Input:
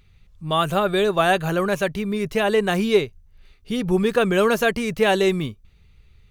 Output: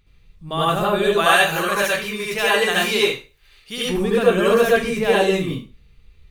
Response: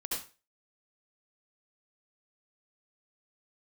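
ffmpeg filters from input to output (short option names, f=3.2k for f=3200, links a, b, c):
-filter_complex "[0:a]asettb=1/sr,asplit=3[a][b][c];[a]atrim=end=1.174[d];[b]atrim=start=1.17:end=3.9,asetpts=PTS-STARTPTS,afade=t=in:d=0.004:c=qsin,afade=t=out:st=2.726:d=0.004:c=qsin,tiltshelf=f=660:g=-9[e];[c]atrim=start=3.896[f];[d][e]acrossfade=d=0.004:c1=hsin:c2=qsin[g];[g][f]acrossfade=d=0.004:c1=qsin:c2=hsin[h];[1:a]atrim=start_sample=2205[i];[h][i]afir=irnorm=-1:irlink=0,volume=-1dB"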